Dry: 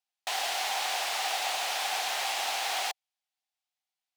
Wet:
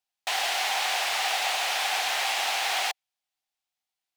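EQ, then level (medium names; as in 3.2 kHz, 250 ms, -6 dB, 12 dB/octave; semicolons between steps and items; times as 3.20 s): dynamic bell 2.1 kHz, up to +4 dB, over -43 dBFS, Q 0.81; +2.0 dB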